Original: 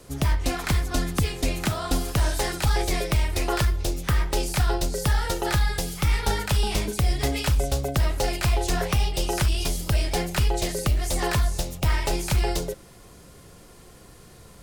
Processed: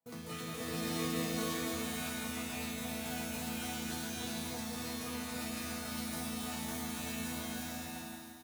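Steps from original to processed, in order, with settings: gate -39 dBFS, range -28 dB; in parallel at -5 dB: integer overflow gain 26 dB; on the sum: feedback delay 294 ms, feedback 52%, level -6 dB; speed mistake 45 rpm record played at 78 rpm; doubling 36 ms -7 dB; compressor with a negative ratio -23 dBFS, ratio -1; high-pass 89 Hz; chord resonator E3 sus4, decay 0.84 s; swelling reverb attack 600 ms, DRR -4.5 dB; trim +3 dB

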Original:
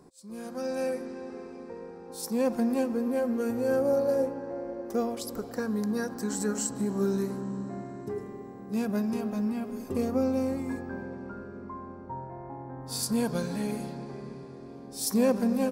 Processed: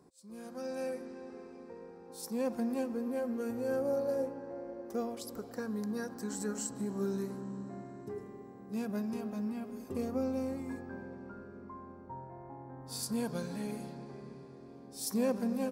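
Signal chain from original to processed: high-pass 45 Hz; trim -7 dB

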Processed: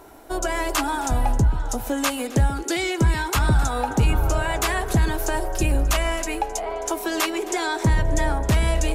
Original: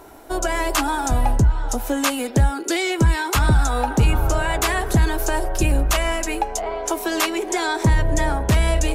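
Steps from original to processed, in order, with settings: echo whose repeats swap between lows and highs 132 ms, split 1 kHz, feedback 54%, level -14 dB; trim -2.5 dB

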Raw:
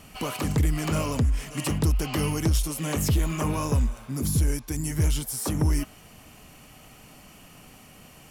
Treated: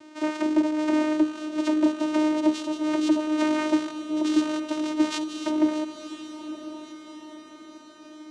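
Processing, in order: rattle on loud lows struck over -25 dBFS, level -26 dBFS; 3.37–5.18 s: peaking EQ 3.3 kHz +13 dB 0.73 oct; vocoder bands 4, saw 307 Hz; echo that smears into a reverb 1004 ms, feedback 53%, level -11.5 dB; trim +4 dB

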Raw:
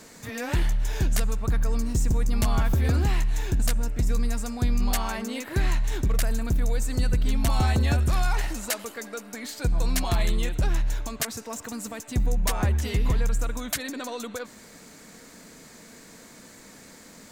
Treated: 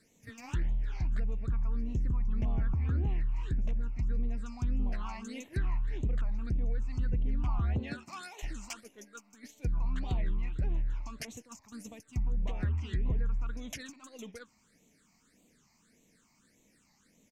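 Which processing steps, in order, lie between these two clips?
7.78–8.42 s: high-pass 140 Hz -> 380 Hz 24 dB/octave; delay 131 ms -22.5 dB; phase shifter stages 8, 1.7 Hz, lowest notch 460–1500 Hz; gate -37 dBFS, range -9 dB; low-pass that closes with the level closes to 1.1 kHz, closed at -16 dBFS; warped record 45 rpm, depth 160 cents; trim -8.5 dB

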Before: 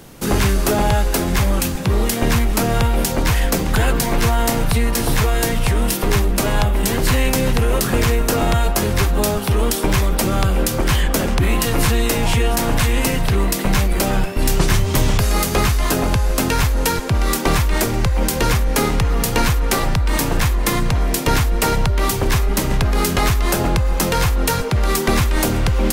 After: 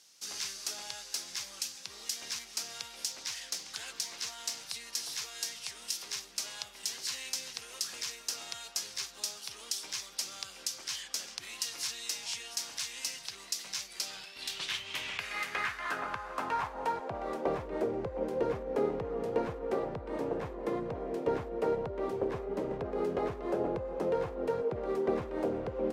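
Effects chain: band-pass sweep 5.4 kHz -> 470 Hz, 13.92–17.71 s; 3.09–4.62 s: loudspeaker Doppler distortion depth 0.13 ms; trim -5.5 dB

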